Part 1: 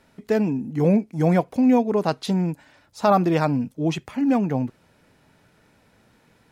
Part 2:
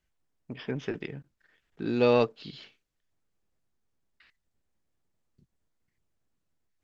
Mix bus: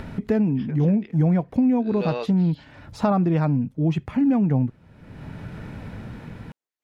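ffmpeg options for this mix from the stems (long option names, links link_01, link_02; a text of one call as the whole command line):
ffmpeg -i stem1.wav -i stem2.wav -filter_complex "[0:a]tremolo=f=0.69:d=0.47,acompressor=mode=upward:threshold=-28dB:ratio=2.5,bass=frequency=250:gain=12,treble=frequency=4000:gain=-12,volume=0.5dB[link_01];[1:a]highpass=380,volume=-5dB[link_02];[link_01][link_02]amix=inputs=2:normalize=0,acompressor=threshold=-16dB:ratio=10" out.wav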